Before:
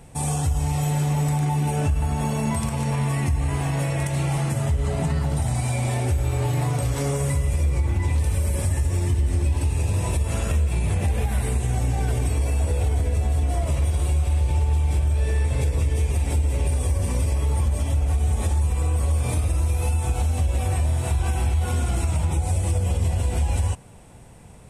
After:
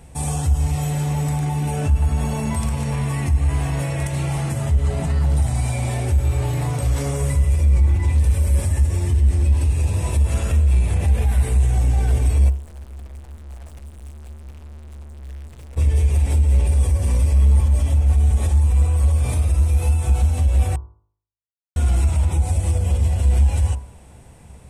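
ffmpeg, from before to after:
ffmpeg -i in.wav -filter_complex "[0:a]asplit=3[link_01][link_02][link_03];[link_01]afade=type=out:start_time=12.48:duration=0.02[link_04];[link_02]aeval=exprs='(tanh(141*val(0)+0.65)-tanh(0.65))/141':channel_layout=same,afade=type=in:start_time=12.48:duration=0.02,afade=type=out:start_time=15.76:duration=0.02[link_05];[link_03]afade=type=in:start_time=15.76:duration=0.02[link_06];[link_04][link_05][link_06]amix=inputs=3:normalize=0,asplit=3[link_07][link_08][link_09];[link_07]atrim=end=20.76,asetpts=PTS-STARTPTS,afade=type=out:start_time=20.756:duration=0.004:curve=hsin[link_10];[link_08]atrim=start=20.76:end=21.76,asetpts=PTS-STARTPTS,volume=0[link_11];[link_09]atrim=start=21.76,asetpts=PTS-STARTPTS,afade=type=in:duration=0.004:curve=hsin[link_12];[link_10][link_11][link_12]concat=n=3:v=0:a=1,equalizer=frequency=67:width_type=o:width=0.29:gain=12,bandreject=frequency=51.84:width_type=h:width=4,bandreject=frequency=103.68:width_type=h:width=4,bandreject=frequency=155.52:width_type=h:width=4,bandreject=frequency=207.36:width_type=h:width=4,bandreject=frequency=259.2:width_type=h:width=4,bandreject=frequency=311.04:width_type=h:width=4,bandreject=frequency=362.88:width_type=h:width=4,bandreject=frequency=414.72:width_type=h:width=4,bandreject=frequency=466.56:width_type=h:width=4,bandreject=frequency=518.4:width_type=h:width=4,bandreject=frequency=570.24:width_type=h:width=4,bandreject=frequency=622.08:width_type=h:width=4,bandreject=frequency=673.92:width_type=h:width=4,bandreject=frequency=725.76:width_type=h:width=4,bandreject=frequency=777.6:width_type=h:width=4,bandreject=frequency=829.44:width_type=h:width=4,bandreject=frequency=881.28:width_type=h:width=4,bandreject=frequency=933.12:width_type=h:width=4,bandreject=frequency=984.96:width_type=h:width=4,bandreject=frequency=1036.8:width_type=h:width=4,bandreject=frequency=1088.64:width_type=h:width=4,bandreject=frequency=1140.48:width_type=h:width=4,bandreject=frequency=1192.32:width_type=h:width=4,bandreject=frequency=1244.16:width_type=h:width=4,bandreject=frequency=1296:width_type=h:width=4,bandreject=frequency=1347.84:width_type=h:width=4,bandreject=frequency=1399.68:width_type=h:width=4,bandreject=frequency=1451.52:width_type=h:width=4,acontrast=51,volume=-5.5dB" out.wav

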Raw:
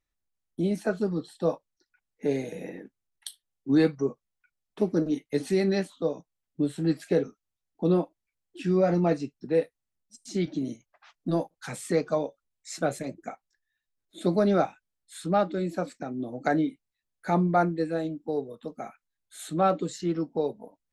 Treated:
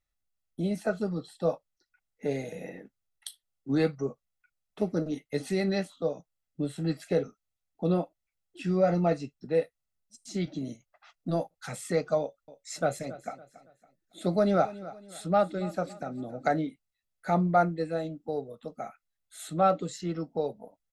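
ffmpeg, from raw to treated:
ffmpeg -i in.wav -filter_complex "[0:a]asettb=1/sr,asplit=3[link_01][link_02][link_03];[link_01]atrim=end=12.204[link_04];[link_02]atrim=start=12.2:end=16.54,asetpts=PTS-STARTPTS,afade=type=in:duration=0.004:curve=qsin,afade=type=out:start_time=4.336:duration=0.004:curve=qsin,aecho=1:1:279|558|837:0.141|0.0537|0.0204,atrim=end_sample=191394[link_05];[link_03]atrim=start=16.536[link_06];[link_04][link_05]acrossfade=duration=0.004:curve1=hsin:curve2=qsin[link_07];[link_07][link_06]acrossfade=duration=0.004:curve1=qsin:curve2=hsin,aecho=1:1:1.5:0.4,volume=-2dB" out.wav

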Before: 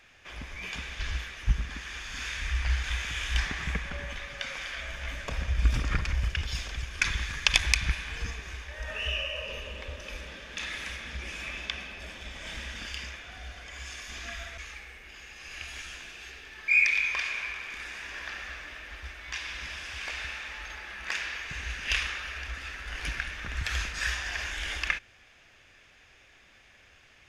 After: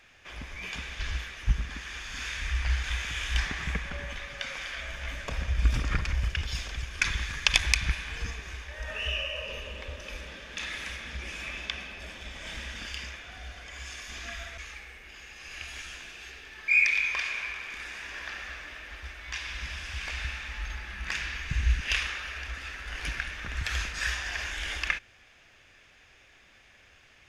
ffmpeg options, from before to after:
ffmpeg -i in.wav -filter_complex "[0:a]asettb=1/sr,asplit=3[link_01][link_02][link_03];[link_01]atrim=end=19.074[link_04];[link_02]atrim=start=19.07:end=21.81,asetpts=PTS-STARTPTS,afade=type=in:duration=0.004:curve=qsin,afade=type=out:start_time=2.736:duration=0.004:curve=qsin,asubboost=boost=7.5:cutoff=210[link_05];[link_03]atrim=start=21.806[link_06];[link_04][link_05]acrossfade=duration=0.004:curve1=hsin:curve2=qsin[link_07];[link_07][link_06]acrossfade=duration=0.004:curve1=qsin:curve2=hsin" out.wav

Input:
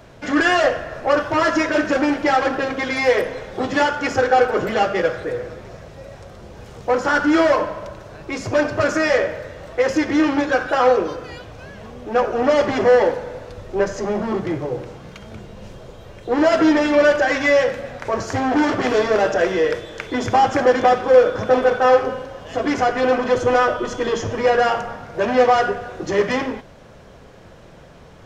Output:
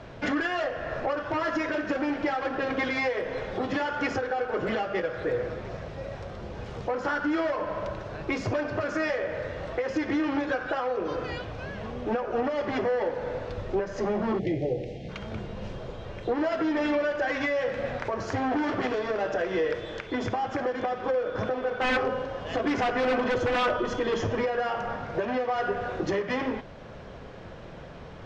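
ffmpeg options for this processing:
ffmpeg -i in.wav -filter_complex "[0:a]asplit=3[link_01][link_02][link_03];[link_01]afade=type=out:start_time=14.38:duration=0.02[link_04];[link_02]asuperstop=centerf=1200:order=8:qfactor=1,afade=type=in:start_time=14.38:duration=0.02,afade=type=out:start_time=15.08:duration=0.02[link_05];[link_03]afade=type=in:start_time=15.08:duration=0.02[link_06];[link_04][link_05][link_06]amix=inputs=3:normalize=0,asettb=1/sr,asplit=3[link_07][link_08][link_09];[link_07]atrim=end=21.774[link_10];[link_08]atrim=start=21.77:end=24.45,asetpts=PTS-STARTPTS,afade=type=in:duration=0.004:curve=qsin,afade=type=out:start_time=2.676:duration=0.004:curve=qsin,aeval=exprs='0.2*(abs(mod(val(0)/0.2+3,4)-2)-1)':channel_layout=same[link_11];[link_09]atrim=start=24.446[link_12];[link_10][link_11]acrossfade=duration=0.004:curve1=hsin:curve2=qsin[link_13];[link_13][link_12]acrossfade=duration=0.004:curve1=qsin:curve2=hsin,lowpass=4300,acompressor=threshold=-21dB:ratio=6,alimiter=limit=-19.5dB:level=0:latency=1:release=445,volume=1dB" out.wav

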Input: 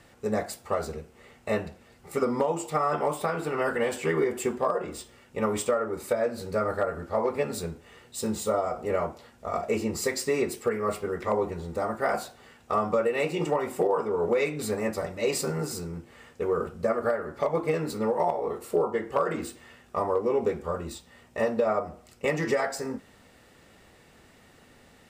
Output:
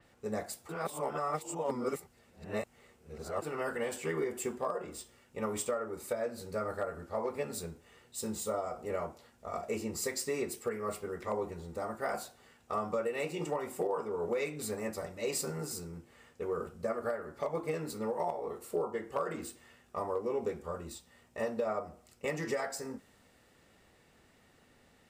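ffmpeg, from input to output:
ffmpeg -i in.wav -filter_complex "[0:a]asplit=3[link_01][link_02][link_03];[link_01]atrim=end=0.692[link_04];[link_02]atrim=start=0.688:end=3.422,asetpts=PTS-STARTPTS,areverse[link_05];[link_03]atrim=start=3.418[link_06];[link_04][link_05]acrossfade=duration=0.004:curve1=hsin:curve2=hsin[link_07];[link_07][link_06]acrossfade=duration=0.004:curve1=hsin:curve2=hsin,adynamicequalizer=threshold=0.00398:dfrequency=5100:dqfactor=0.7:tfrequency=5100:tqfactor=0.7:attack=5:release=100:ratio=0.375:range=3:mode=boostabove:tftype=highshelf,volume=-8.5dB" out.wav

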